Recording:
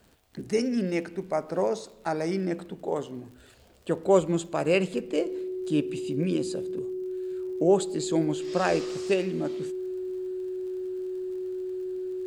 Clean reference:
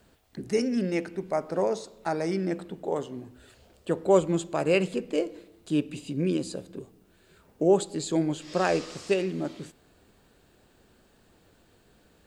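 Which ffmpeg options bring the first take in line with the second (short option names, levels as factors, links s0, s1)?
-af "adeclick=t=4,bandreject=f=370:w=30"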